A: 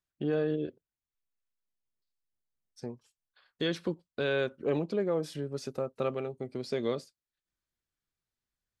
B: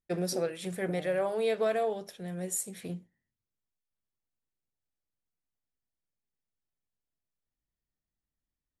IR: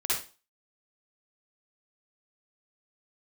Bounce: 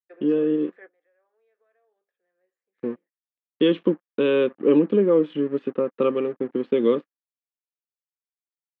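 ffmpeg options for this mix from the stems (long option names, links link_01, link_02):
-filter_complex "[0:a]firequalizer=gain_entry='entry(120,0);entry(210,7);entry(470,5);entry(680,-12);entry(970,2);entry(1600,-14);entry(3000,10);entry(5000,-14);entry(10000,5)':delay=0.05:min_phase=1,aeval=exprs='sgn(val(0))*max(abs(val(0))-0.00237,0)':channel_layout=same,volume=-1.5dB,asplit=2[link_01][link_02];[1:a]highpass=frequency=350:width=0.5412,highpass=frequency=350:width=1.3066,bandreject=frequency=610:width=12,acompressor=threshold=-32dB:ratio=3,volume=-16.5dB[link_03];[link_02]apad=whole_len=388108[link_04];[link_03][link_04]sidechaingate=range=-26dB:threshold=-56dB:ratio=16:detection=peak[link_05];[link_01][link_05]amix=inputs=2:normalize=0,highpass=190,equalizer=frequency=200:width_type=q:width=4:gain=4,equalizer=frequency=300:width_type=q:width=4:gain=7,equalizer=frequency=520:width_type=q:width=4:gain=6,equalizer=frequency=1200:width_type=q:width=4:gain=7,equalizer=frequency=1700:width_type=q:width=4:gain=8,lowpass=frequency=2500:width=0.5412,lowpass=frequency=2500:width=1.3066,dynaudnorm=framelen=240:gausssize=11:maxgain=5.5dB,aemphasis=mode=production:type=75kf"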